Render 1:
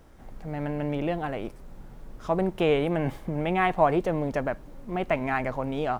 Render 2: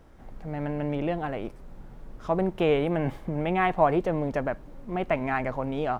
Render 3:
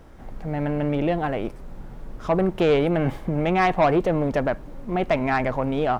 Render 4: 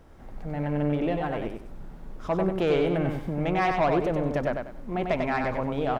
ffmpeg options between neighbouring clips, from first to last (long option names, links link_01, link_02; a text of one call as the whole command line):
ffmpeg -i in.wav -af "highshelf=frequency=4700:gain=-7" out.wav
ffmpeg -i in.wav -af "asoftclip=type=tanh:threshold=-18.5dB,volume=6.5dB" out.wav
ffmpeg -i in.wav -af "aecho=1:1:95|190|285|380:0.596|0.161|0.0434|0.0117,volume=-5.5dB" out.wav